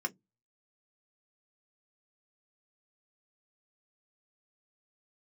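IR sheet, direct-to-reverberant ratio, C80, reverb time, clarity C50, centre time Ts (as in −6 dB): 4.0 dB, 40.5 dB, 0.15 s, 28.5 dB, 6 ms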